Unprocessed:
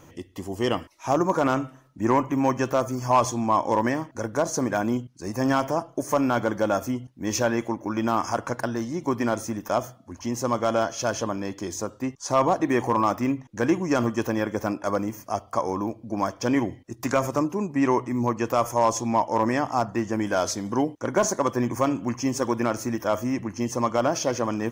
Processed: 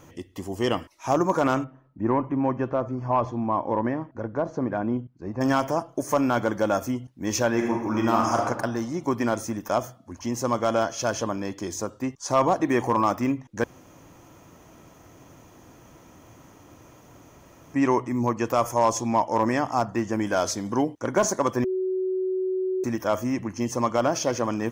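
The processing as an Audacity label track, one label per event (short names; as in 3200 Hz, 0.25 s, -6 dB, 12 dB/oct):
1.640000	5.410000	tape spacing loss at 10 kHz 42 dB
7.500000	8.430000	reverb throw, RT60 1.1 s, DRR 0.5 dB
13.640000	17.740000	room tone
21.640000	22.840000	bleep 374 Hz -23 dBFS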